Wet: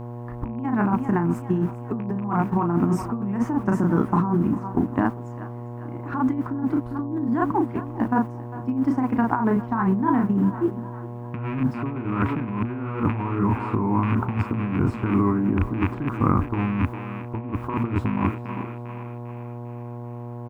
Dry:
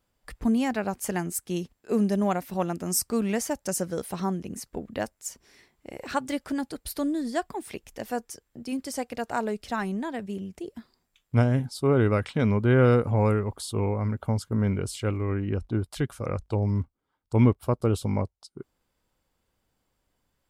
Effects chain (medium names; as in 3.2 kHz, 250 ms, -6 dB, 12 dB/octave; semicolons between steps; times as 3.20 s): rattle on loud lows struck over -25 dBFS, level -13 dBFS; peaking EQ 11 kHz -14 dB 0.55 oct; doubling 35 ms -4.5 dB; in parallel at -11 dB: word length cut 6-bit, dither triangular; on the sum: gate -32 dBFS, range -11 dB; FFT filter 140 Hz 0 dB, 300 Hz +8 dB, 530 Hz -17 dB, 1 kHz +8 dB, 4.2 kHz -27 dB; thinning echo 399 ms, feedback 52%, level -17.5 dB; compressor with a negative ratio -27 dBFS, ratio -1; hum notches 60/120 Hz; mains buzz 120 Hz, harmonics 9, -38 dBFS -6 dB/octave; trim +3.5 dB